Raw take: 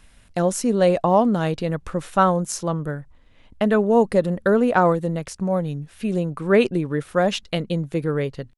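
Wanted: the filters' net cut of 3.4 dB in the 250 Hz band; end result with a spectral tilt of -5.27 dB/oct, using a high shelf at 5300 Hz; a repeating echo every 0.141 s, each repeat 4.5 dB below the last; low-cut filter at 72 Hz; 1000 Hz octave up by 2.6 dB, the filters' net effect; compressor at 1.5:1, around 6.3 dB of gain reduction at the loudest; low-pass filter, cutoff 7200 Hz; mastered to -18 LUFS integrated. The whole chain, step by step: HPF 72 Hz; LPF 7200 Hz; bell 250 Hz -5 dB; bell 1000 Hz +3.5 dB; high shelf 5300 Hz +6.5 dB; compressor 1.5:1, threshold -29 dBFS; feedback echo 0.141 s, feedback 60%, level -4.5 dB; gain +6.5 dB

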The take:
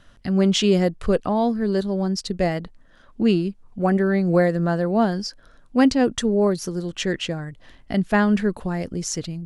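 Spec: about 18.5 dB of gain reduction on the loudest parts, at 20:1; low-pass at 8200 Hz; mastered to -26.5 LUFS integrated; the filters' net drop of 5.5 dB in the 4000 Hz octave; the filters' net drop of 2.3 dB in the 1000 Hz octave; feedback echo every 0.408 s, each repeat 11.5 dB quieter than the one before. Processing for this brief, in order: LPF 8200 Hz; bell 1000 Hz -3 dB; bell 4000 Hz -7.5 dB; compressor 20:1, threshold -31 dBFS; feedback echo 0.408 s, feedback 27%, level -11.5 dB; gain +9.5 dB

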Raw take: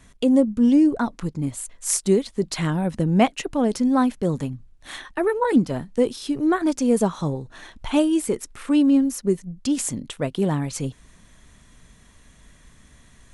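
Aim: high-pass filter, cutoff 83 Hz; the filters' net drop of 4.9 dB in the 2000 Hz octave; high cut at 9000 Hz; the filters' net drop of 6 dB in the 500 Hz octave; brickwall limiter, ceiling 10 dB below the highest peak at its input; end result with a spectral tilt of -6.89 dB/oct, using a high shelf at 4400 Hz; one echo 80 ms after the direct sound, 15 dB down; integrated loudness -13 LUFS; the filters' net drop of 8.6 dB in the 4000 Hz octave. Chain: HPF 83 Hz; LPF 9000 Hz; bell 500 Hz -7.5 dB; bell 2000 Hz -3 dB; bell 4000 Hz -7 dB; high shelf 4400 Hz -6.5 dB; limiter -18 dBFS; echo 80 ms -15 dB; gain +14.5 dB

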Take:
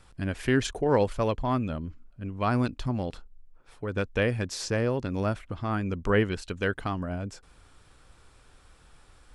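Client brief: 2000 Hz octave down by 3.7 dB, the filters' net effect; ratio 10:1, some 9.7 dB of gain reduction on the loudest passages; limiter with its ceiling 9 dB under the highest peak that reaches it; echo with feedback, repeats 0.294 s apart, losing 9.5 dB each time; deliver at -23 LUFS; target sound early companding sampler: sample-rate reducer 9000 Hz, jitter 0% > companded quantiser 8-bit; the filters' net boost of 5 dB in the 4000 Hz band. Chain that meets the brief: bell 2000 Hz -7 dB; bell 4000 Hz +9 dB; compressor 10:1, threshold -28 dBFS; limiter -25.5 dBFS; feedback echo 0.294 s, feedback 33%, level -9.5 dB; sample-rate reducer 9000 Hz, jitter 0%; companded quantiser 8-bit; gain +13 dB

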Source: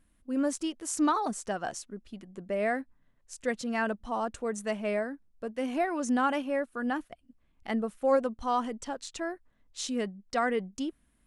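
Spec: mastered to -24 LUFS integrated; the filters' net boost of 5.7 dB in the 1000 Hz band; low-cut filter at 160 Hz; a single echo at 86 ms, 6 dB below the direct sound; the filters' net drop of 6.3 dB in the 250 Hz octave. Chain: HPF 160 Hz; bell 250 Hz -7 dB; bell 1000 Hz +8 dB; echo 86 ms -6 dB; gain +4.5 dB

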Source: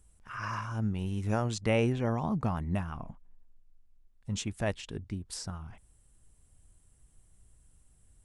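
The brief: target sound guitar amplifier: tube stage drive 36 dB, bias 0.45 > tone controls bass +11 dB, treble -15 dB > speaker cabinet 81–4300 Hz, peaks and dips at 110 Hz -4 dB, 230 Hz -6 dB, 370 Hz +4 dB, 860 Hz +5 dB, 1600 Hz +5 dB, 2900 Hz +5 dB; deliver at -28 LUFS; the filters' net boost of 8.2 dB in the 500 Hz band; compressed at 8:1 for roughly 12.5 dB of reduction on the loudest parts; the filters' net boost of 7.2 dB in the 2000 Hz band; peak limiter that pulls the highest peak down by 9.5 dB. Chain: bell 500 Hz +7 dB; bell 2000 Hz +6 dB; compressor 8:1, threshold -31 dBFS; limiter -30.5 dBFS; tube stage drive 36 dB, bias 0.45; tone controls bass +11 dB, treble -15 dB; speaker cabinet 81–4300 Hz, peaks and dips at 110 Hz -4 dB, 230 Hz -6 dB, 370 Hz +4 dB, 860 Hz +5 dB, 1600 Hz +5 dB, 2900 Hz +5 dB; gain +11 dB

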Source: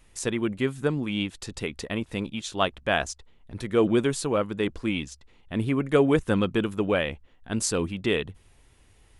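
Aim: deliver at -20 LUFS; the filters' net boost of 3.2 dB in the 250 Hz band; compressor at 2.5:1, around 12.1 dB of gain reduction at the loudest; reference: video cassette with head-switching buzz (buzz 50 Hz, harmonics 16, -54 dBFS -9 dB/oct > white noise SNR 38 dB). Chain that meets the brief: bell 250 Hz +4 dB; compressor 2.5:1, threshold -33 dBFS; buzz 50 Hz, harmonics 16, -54 dBFS -9 dB/oct; white noise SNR 38 dB; gain +14 dB

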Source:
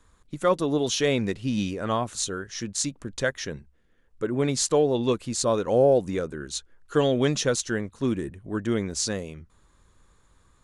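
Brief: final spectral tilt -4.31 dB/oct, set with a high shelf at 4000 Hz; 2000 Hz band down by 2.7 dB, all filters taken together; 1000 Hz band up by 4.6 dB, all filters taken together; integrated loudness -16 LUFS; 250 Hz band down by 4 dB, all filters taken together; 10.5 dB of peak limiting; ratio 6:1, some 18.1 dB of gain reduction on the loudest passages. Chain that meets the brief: bell 250 Hz -5.5 dB; bell 1000 Hz +8 dB; bell 2000 Hz -5.5 dB; high shelf 4000 Hz -8 dB; compressor 6:1, threshold -35 dBFS; gain +25.5 dB; limiter -5 dBFS

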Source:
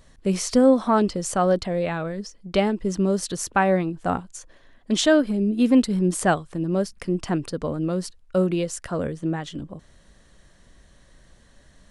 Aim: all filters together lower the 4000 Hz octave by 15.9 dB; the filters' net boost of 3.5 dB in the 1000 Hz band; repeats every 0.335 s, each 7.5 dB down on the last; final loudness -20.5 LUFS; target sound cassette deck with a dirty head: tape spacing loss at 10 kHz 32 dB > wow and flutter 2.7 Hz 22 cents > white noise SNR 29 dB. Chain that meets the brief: tape spacing loss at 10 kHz 32 dB; bell 1000 Hz +9 dB; bell 4000 Hz -6.5 dB; feedback echo 0.335 s, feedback 42%, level -7.5 dB; wow and flutter 2.7 Hz 22 cents; white noise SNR 29 dB; gain +2 dB

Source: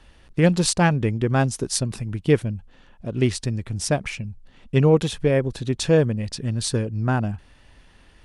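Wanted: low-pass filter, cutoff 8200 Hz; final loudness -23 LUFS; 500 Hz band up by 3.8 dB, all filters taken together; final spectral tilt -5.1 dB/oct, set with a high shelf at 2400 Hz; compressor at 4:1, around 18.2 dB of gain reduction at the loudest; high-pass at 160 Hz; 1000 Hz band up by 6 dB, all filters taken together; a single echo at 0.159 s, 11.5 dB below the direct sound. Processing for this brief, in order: HPF 160 Hz; LPF 8200 Hz; bell 500 Hz +3 dB; bell 1000 Hz +7.5 dB; high shelf 2400 Hz -4 dB; compressor 4:1, threshold -32 dBFS; echo 0.159 s -11.5 dB; gain +12.5 dB

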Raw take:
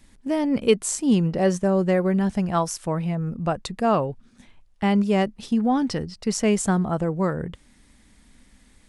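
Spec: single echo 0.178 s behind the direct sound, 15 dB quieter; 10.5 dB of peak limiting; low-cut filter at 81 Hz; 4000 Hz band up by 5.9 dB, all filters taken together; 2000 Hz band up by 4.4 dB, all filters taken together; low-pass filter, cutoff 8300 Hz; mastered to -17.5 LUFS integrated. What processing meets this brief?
HPF 81 Hz; LPF 8300 Hz; bell 2000 Hz +3.5 dB; bell 4000 Hz +7.5 dB; limiter -15.5 dBFS; echo 0.178 s -15 dB; gain +7.5 dB

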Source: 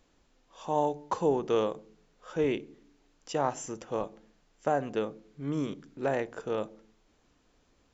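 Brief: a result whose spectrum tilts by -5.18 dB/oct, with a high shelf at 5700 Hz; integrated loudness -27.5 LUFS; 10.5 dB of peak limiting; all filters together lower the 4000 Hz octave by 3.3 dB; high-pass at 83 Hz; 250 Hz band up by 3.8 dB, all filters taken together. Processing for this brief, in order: HPF 83 Hz; bell 250 Hz +5 dB; bell 4000 Hz -6.5 dB; high shelf 5700 Hz +5 dB; gain +9 dB; limiter -14.5 dBFS

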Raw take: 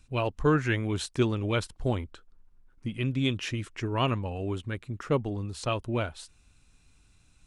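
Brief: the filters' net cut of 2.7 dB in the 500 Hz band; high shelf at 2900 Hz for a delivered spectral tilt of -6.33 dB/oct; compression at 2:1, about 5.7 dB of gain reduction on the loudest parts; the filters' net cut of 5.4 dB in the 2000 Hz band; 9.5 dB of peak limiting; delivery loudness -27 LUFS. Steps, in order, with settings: bell 500 Hz -3 dB; bell 2000 Hz -4 dB; high shelf 2900 Hz -7.5 dB; compressor 2:1, threshold -30 dBFS; gain +11.5 dB; limiter -17.5 dBFS

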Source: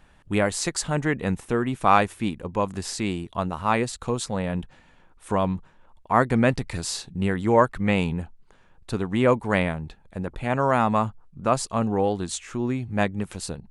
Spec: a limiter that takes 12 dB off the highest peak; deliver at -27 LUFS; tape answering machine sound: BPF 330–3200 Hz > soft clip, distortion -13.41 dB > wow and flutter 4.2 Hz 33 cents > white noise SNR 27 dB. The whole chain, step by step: limiter -16 dBFS; BPF 330–3200 Hz; soft clip -21.5 dBFS; wow and flutter 4.2 Hz 33 cents; white noise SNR 27 dB; gain +7.5 dB

